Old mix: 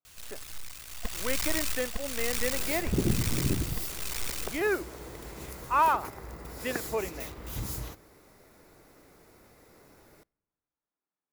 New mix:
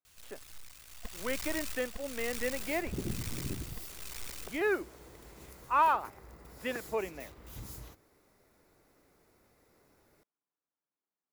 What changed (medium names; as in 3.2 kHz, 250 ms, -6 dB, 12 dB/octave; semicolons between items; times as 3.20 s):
first sound -7.5 dB; second sound -7.0 dB; reverb: off